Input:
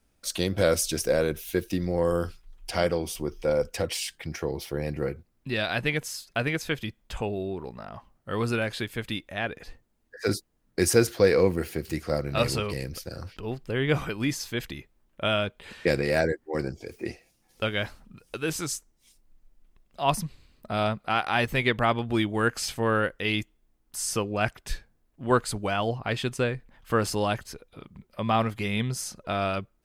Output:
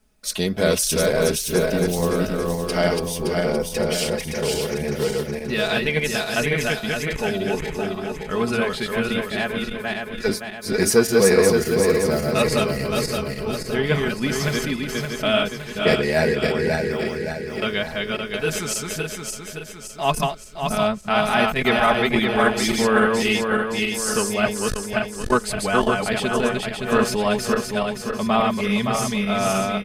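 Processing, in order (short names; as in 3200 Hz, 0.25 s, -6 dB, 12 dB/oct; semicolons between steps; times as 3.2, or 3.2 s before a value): regenerating reverse delay 0.284 s, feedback 69%, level -2 dB; comb 4.7 ms, depth 67%; core saturation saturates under 430 Hz; gain +3 dB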